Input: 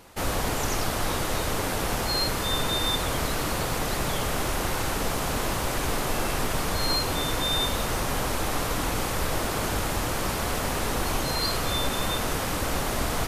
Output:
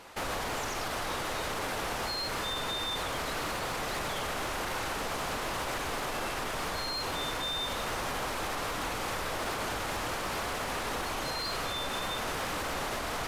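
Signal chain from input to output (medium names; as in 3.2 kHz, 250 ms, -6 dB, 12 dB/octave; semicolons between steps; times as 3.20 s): peak limiter -22 dBFS, peak gain reduction 9.5 dB; overdrive pedal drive 12 dB, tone 3.7 kHz, clips at -22 dBFS; trim -3 dB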